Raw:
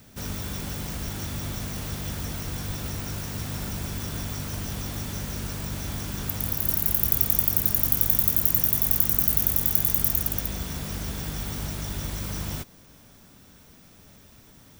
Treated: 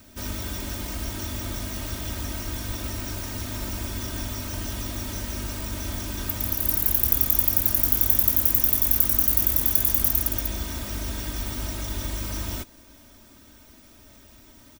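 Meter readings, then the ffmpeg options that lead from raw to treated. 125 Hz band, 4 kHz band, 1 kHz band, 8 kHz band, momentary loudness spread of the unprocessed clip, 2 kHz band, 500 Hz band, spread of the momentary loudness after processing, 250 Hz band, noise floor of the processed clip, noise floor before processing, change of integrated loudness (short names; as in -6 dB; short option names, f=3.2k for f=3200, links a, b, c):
-1.0 dB, +2.0 dB, +1.0 dB, +1.5 dB, 13 LU, +1.5 dB, +1.5 dB, 14 LU, 0.0 dB, -51 dBFS, -52 dBFS, +1.5 dB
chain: -af "aecho=1:1:3.2:0.88,volume=-1dB"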